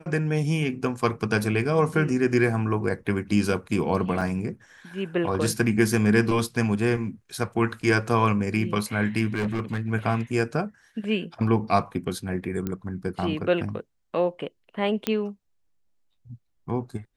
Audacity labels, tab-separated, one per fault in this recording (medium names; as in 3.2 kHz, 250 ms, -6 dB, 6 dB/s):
4.210000	4.220000	dropout 6.5 ms
9.330000	9.880000	clipped -22 dBFS
12.670000	12.670000	pop -16 dBFS
15.070000	15.070000	pop -10 dBFS